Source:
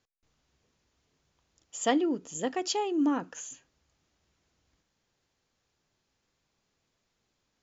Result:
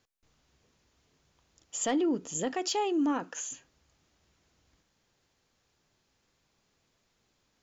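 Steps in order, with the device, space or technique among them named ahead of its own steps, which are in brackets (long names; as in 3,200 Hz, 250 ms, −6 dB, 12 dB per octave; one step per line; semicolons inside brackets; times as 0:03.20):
0:02.53–0:03.52: low-shelf EQ 180 Hz −12 dB
soft clipper into limiter (soft clipping −17 dBFS, distortion −23 dB; brickwall limiter −26 dBFS, peak gain reduction 8 dB)
level +4 dB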